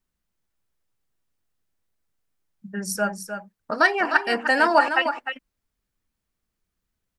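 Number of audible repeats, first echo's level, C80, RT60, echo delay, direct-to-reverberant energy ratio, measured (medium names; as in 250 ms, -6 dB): 1, -8.5 dB, no reverb, no reverb, 305 ms, no reverb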